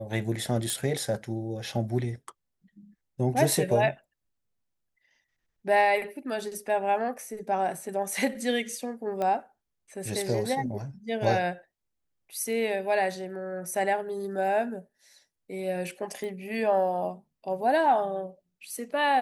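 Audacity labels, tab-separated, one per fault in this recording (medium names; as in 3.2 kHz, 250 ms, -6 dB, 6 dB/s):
0.700000	0.700000	pop
9.220000	9.220000	pop -19 dBFS
16.240000	16.240000	pop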